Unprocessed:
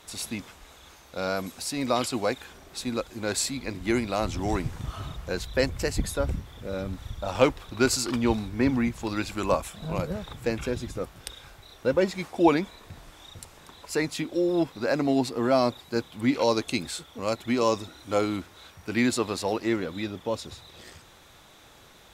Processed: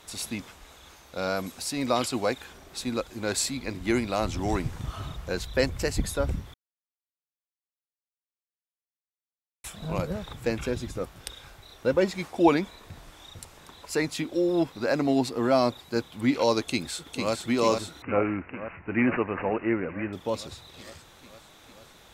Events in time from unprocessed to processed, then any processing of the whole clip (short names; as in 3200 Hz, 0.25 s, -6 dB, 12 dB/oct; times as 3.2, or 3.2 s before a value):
6.54–9.64 mute
16.61–17.33 echo throw 0.45 s, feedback 75%, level -4.5 dB
18.02–20.13 careless resampling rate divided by 8×, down none, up filtered